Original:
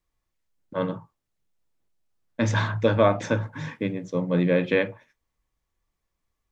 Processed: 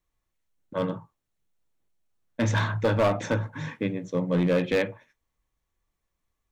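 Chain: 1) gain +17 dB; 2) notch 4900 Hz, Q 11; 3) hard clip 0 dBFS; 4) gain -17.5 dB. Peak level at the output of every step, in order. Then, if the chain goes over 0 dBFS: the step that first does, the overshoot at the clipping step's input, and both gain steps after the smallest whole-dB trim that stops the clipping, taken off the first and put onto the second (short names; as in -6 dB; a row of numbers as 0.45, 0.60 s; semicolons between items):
+10.0, +10.0, 0.0, -17.5 dBFS; step 1, 10.0 dB; step 1 +7 dB, step 4 -7.5 dB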